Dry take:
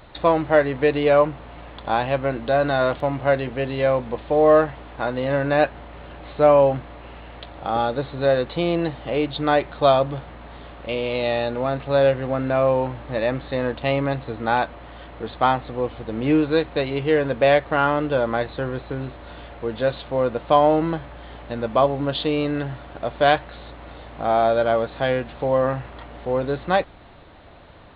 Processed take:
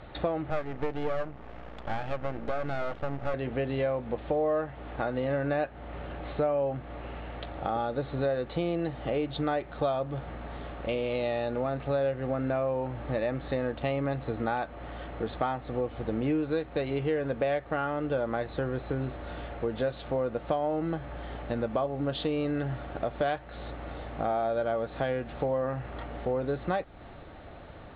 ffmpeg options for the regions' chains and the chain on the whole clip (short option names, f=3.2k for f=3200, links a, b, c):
-filter_complex "[0:a]asettb=1/sr,asplit=3[a][b][c];[a]atrim=end=0.504[d];[b]atrim=start=0.5:end=3.34,asetpts=PTS-STARTPTS,afade=t=in:d=0.004:c=qsin,afade=t=out:st=2.836:d=0.004:c=qsin,highshelf=f=4k:g=-10,aeval=exprs='max(val(0),0)':c=same[e];[c]atrim=start=3.336[f];[d][e]acrossfade=d=0.004:c1=hsin:c2=qsin[g];[g][f]acrossfade=d=0.004:c1=qsin:c2=hsin,acompressor=threshold=-28dB:ratio=4,aemphasis=mode=reproduction:type=75fm,bandreject=f=1k:w=9"